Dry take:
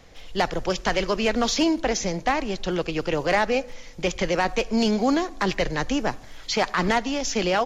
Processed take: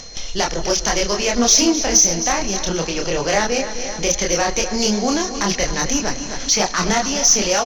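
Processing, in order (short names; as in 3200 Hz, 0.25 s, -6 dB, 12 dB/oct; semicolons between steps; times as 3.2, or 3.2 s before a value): gate with hold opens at -34 dBFS; synth low-pass 6000 Hz, resonance Q 11; chorus voices 6, 1.3 Hz, delay 27 ms, depth 3 ms; feedback echo 0.262 s, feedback 52%, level -13 dB; on a send at -19 dB: reverb RT60 2.8 s, pre-delay 12 ms; on the sum: upward compressor, threshold -23 dBFS; whine 4200 Hz -44 dBFS; in parallel at -4 dB: soft clip -19 dBFS, distortion -11 dB; on the sum: gain +1.5 dB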